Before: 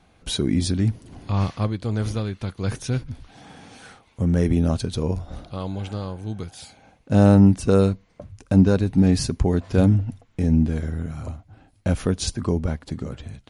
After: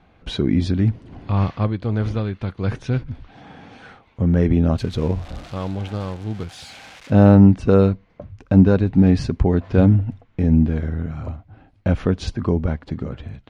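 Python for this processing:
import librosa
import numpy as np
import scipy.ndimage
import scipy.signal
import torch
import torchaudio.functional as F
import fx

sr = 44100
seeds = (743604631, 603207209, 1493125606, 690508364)

y = fx.crossing_spikes(x, sr, level_db=-23.5, at=(4.78, 7.13))
y = scipy.signal.sosfilt(scipy.signal.butter(2, 2900.0, 'lowpass', fs=sr, output='sos'), y)
y = y * librosa.db_to_amplitude(3.0)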